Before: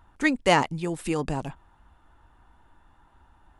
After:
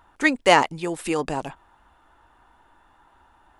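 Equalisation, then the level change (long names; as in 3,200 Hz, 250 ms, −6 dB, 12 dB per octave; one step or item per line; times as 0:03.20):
bass and treble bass −11 dB, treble −1 dB
+5.0 dB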